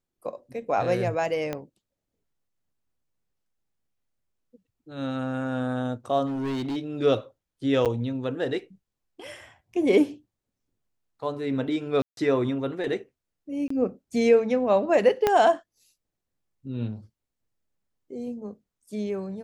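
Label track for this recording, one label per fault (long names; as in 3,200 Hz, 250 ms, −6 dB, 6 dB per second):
1.530000	1.530000	click −16 dBFS
6.260000	6.770000	clipping −26.5 dBFS
7.850000	7.860000	drop-out 7.8 ms
12.020000	12.170000	drop-out 152 ms
13.680000	13.700000	drop-out 24 ms
15.270000	15.270000	click −8 dBFS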